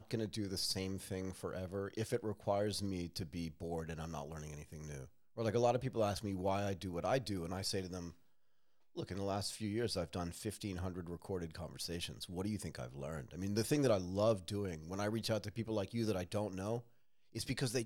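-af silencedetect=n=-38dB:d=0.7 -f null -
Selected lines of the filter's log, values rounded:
silence_start: 8.08
silence_end: 8.98 | silence_duration: 0.90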